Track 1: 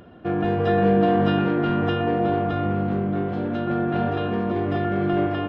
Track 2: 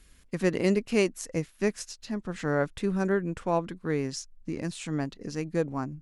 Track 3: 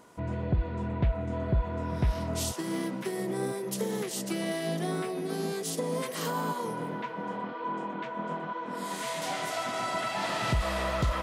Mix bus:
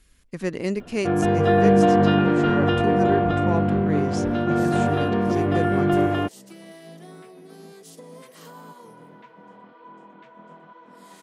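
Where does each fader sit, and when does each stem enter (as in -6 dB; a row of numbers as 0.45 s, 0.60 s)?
+2.5 dB, -1.5 dB, -12.0 dB; 0.80 s, 0.00 s, 2.20 s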